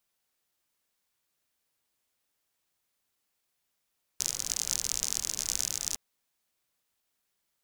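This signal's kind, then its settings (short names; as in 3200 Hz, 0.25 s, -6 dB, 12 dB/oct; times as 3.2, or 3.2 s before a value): rain from filtered ticks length 1.76 s, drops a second 60, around 6300 Hz, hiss -14.5 dB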